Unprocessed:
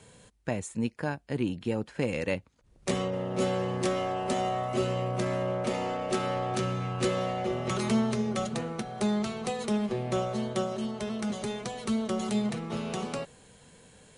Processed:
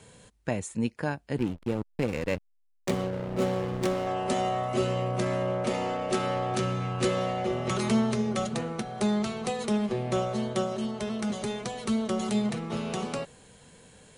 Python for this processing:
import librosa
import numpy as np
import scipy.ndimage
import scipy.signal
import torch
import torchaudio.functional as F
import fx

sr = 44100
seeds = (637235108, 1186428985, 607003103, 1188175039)

y = fx.backlash(x, sr, play_db=-29.5, at=(1.38, 4.07))
y = F.gain(torch.from_numpy(y), 1.5).numpy()